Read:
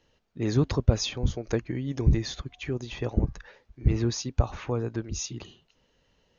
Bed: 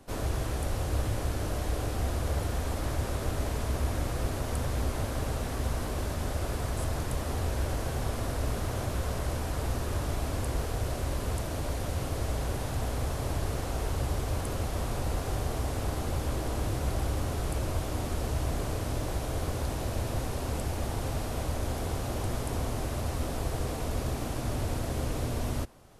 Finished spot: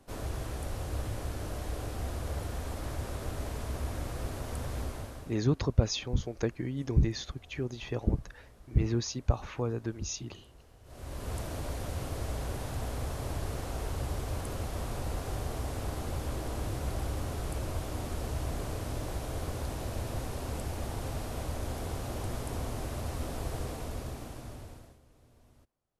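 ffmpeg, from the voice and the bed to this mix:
-filter_complex "[0:a]adelay=4900,volume=-3.5dB[a];[1:a]volume=16.5dB,afade=t=out:st=4.8:d=0.61:silence=0.0944061,afade=t=in:st=10.84:d=0.54:silence=0.0794328,afade=t=out:st=23.57:d=1.42:silence=0.0473151[b];[a][b]amix=inputs=2:normalize=0"

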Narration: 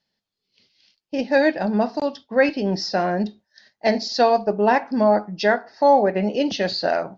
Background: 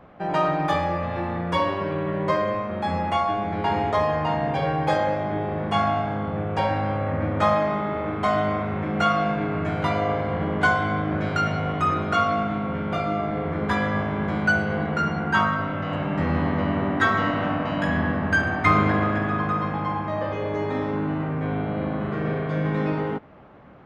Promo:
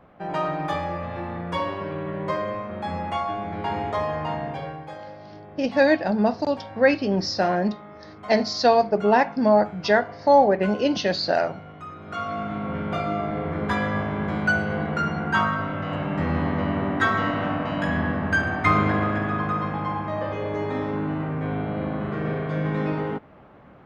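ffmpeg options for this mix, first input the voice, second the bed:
-filter_complex "[0:a]adelay=4450,volume=-0.5dB[a];[1:a]volume=11.5dB,afade=t=out:st=4.33:d=0.55:silence=0.237137,afade=t=in:st=11.99:d=0.77:silence=0.16788[b];[a][b]amix=inputs=2:normalize=0"

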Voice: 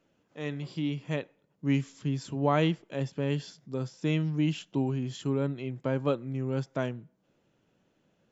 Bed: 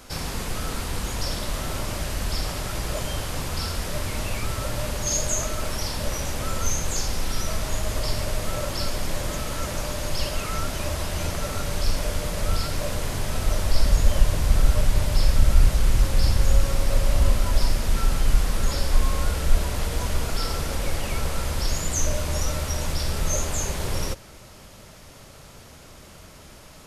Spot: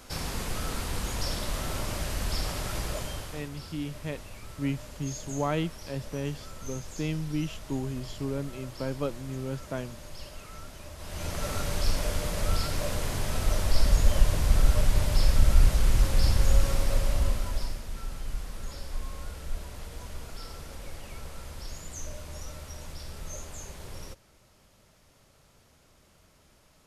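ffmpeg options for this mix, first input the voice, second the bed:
-filter_complex "[0:a]adelay=2950,volume=-3.5dB[a];[1:a]volume=10dB,afade=t=out:st=2.78:d=0.72:silence=0.223872,afade=t=in:st=10.97:d=0.53:silence=0.211349,afade=t=out:st=16.7:d=1.15:silence=0.251189[b];[a][b]amix=inputs=2:normalize=0"

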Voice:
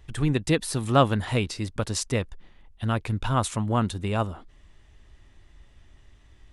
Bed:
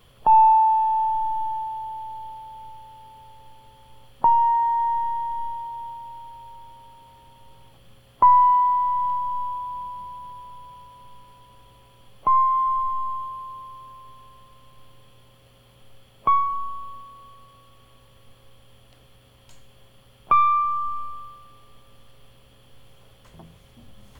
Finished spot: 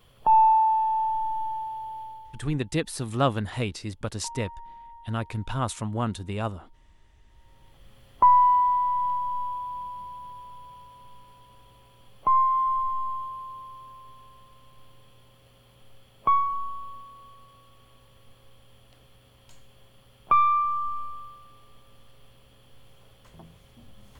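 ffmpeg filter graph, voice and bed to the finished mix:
-filter_complex "[0:a]adelay=2250,volume=-4dB[a];[1:a]volume=18dB,afade=t=out:st=2.01:d=0.45:silence=0.0944061,afade=t=in:st=7.26:d=0.73:silence=0.0841395[b];[a][b]amix=inputs=2:normalize=0"

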